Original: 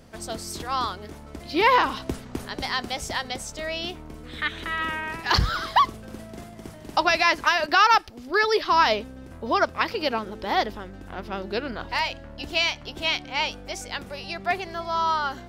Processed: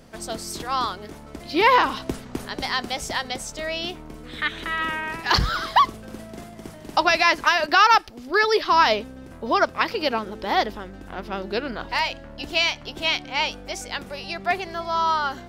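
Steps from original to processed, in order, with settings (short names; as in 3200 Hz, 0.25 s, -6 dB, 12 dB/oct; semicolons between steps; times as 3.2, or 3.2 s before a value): bell 81 Hz -6 dB 0.77 oct; gain +2 dB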